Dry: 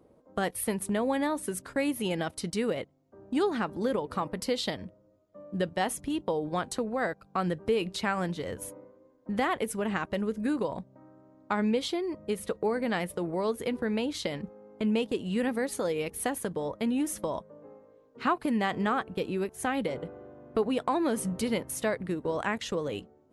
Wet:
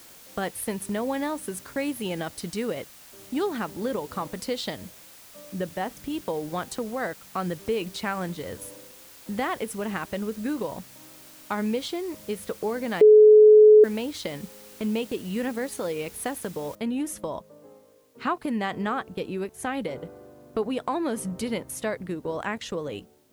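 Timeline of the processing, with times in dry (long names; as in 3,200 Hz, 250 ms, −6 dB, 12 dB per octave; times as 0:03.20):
0:05.54–0:05.97: high-frequency loss of the air 330 metres
0:13.01–0:13.84: beep over 427 Hz −9 dBFS
0:16.75: noise floor change −49 dB −68 dB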